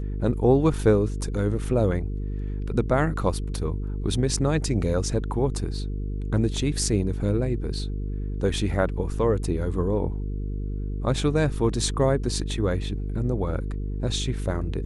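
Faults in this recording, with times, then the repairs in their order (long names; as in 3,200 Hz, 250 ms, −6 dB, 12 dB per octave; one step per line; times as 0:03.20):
mains buzz 50 Hz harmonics 9 −29 dBFS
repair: hum removal 50 Hz, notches 9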